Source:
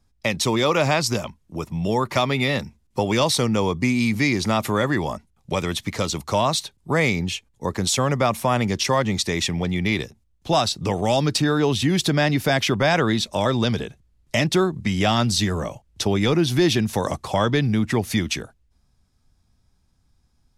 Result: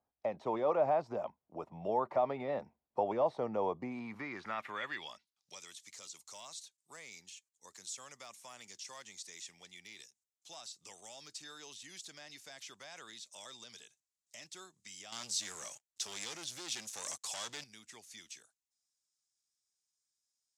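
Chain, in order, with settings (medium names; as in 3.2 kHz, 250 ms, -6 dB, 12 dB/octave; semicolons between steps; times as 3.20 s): de-esser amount 90%; 15.12–17.64 s: waveshaping leveller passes 3; band-pass sweep 700 Hz -> 7.2 kHz, 3.82–5.70 s; trim -3.5 dB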